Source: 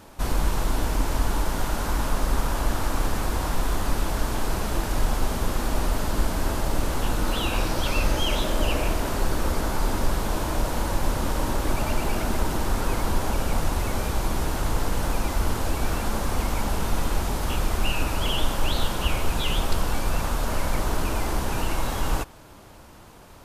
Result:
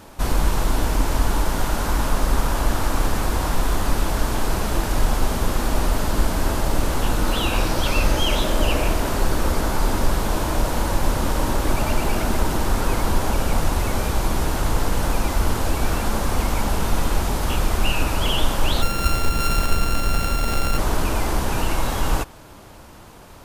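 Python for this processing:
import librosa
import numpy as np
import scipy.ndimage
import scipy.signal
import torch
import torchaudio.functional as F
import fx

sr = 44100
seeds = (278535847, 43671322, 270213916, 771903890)

y = fx.sample_sort(x, sr, block=32, at=(18.81, 20.77), fade=0.02)
y = y * 10.0 ** (4.0 / 20.0)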